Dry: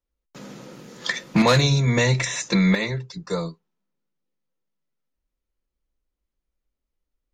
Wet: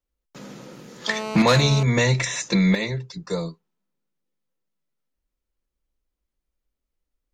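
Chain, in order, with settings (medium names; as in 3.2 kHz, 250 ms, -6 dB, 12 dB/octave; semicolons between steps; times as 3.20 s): 1.08–1.83 s: mobile phone buzz -30 dBFS; 2.48–3.48 s: dynamic bell 1.3 kHz, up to -6 dB, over -43 dBFS, Q 1.7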